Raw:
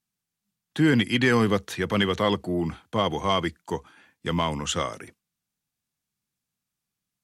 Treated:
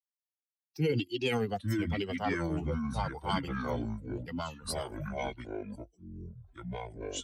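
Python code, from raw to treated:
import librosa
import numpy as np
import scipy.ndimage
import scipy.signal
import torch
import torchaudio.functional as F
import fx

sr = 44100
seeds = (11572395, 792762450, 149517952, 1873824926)

y = fx.bin_expand(x, sr, power=2.0)
y = fx.formant_shift(y, sr, semitones=6)
y = fx.echo_pitch(y, sr, ms=525, semitones=-6, count=2, db_per_echo=-3.0)
y = F.gain(torch.from_numpy(y), -6.5).numpy()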